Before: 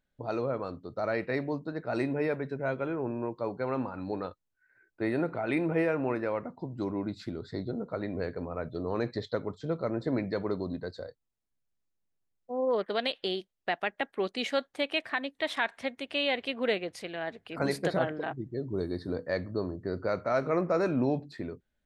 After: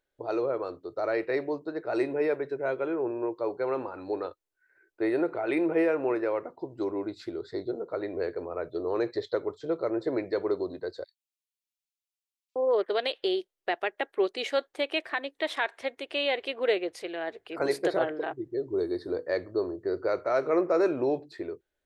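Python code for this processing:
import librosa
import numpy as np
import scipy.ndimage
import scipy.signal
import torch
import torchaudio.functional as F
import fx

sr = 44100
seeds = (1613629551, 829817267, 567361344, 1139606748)

y = fx.steep_highpass(x, sr, hz=2300.0, slope=48, at=(11.04, 12.56))
y = fx.low_shelf_res(y, sr, hz=280.0, db=-8.0, q=3.0)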